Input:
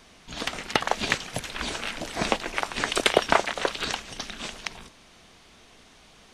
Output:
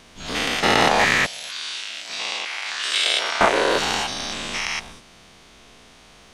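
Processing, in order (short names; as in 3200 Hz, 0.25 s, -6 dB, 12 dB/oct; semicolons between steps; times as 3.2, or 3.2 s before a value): spectral dilation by 0.24 s; 1.26–3.41 band-pass 4400 Hz, Q 1.2; gain -1 dB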